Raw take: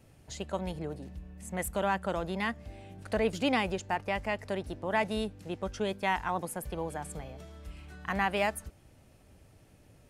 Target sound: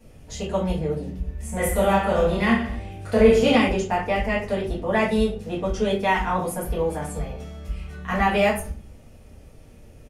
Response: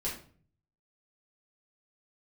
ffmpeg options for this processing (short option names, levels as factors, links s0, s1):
-filter_complex "[0:a]asplit=3[s0][s1][s2];[s0]afade=t=out:st=1.22:d=0.02[s3];[s1]aecho=1:1:30|67.5|114.4|173|246.2:0.631|0.398|0.251|0.158|0.1,afade=t=in:st=1.22:d=0.02,afade=t=out:st=3.55:d=0.02[s4];[s2]afade=t=in:st=3.55:d=0.02[s5];[s3][s4][s5]amix=inputs=3:normalize=0[s6];[1:a]atrim=start_sample=2205,asetrate=52920,aresample=44100[s7];[s6][s7]afir=irnorm=-1:irlink=0,volume=2"